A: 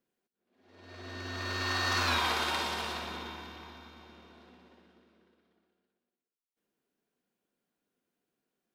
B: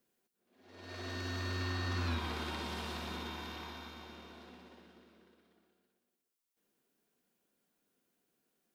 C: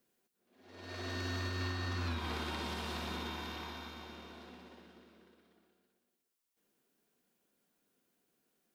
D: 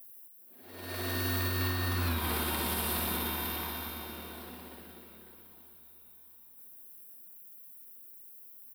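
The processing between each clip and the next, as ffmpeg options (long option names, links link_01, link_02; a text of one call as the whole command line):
ffmpeg -i in.wav -filter_complex "[0:a]acrossover=split=4700[link_01][link_02];[link_02]acompressor=threshold=-48dB:ratio=4:attack=1:release=60[link_03];[link_01][link_03]amix=inputs=2:normalize=0,highshelf=frequency=5900:gain=6.5,acrossover=split=320[link_04][link_05];[link_05]acompressor=threshold=-44dB:ratio=5[link_06];[link_04][link_06]amix=inputs=2:normalize=0,volume=2.5dB" out.wav
ffmpeg -i in.wav -af "alimiter=level_in=6dB:limit=-24dB:level=0:latency=1:release=242,volume=-6dB,volume=1.5dB" out.wav
ffmpeg -i in.wav -af "aexciter=amount=9.4:drive=8.4:freq=9400,aecho=1:1:931|1862|2793:0.0708|0.0319|0.0143,volume=5.5dB" out.wav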